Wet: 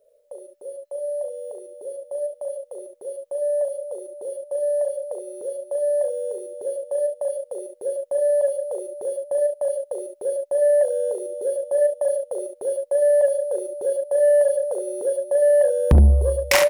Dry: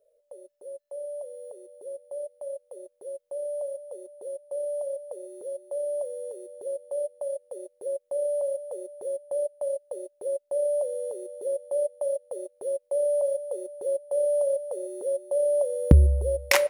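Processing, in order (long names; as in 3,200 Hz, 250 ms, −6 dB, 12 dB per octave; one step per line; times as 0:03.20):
ambience of single reflections 39 ms −8.5 dB, 70 ms −8 dB
soft clipping −15 dBFS, distortion −10 dB
level +6.5 dB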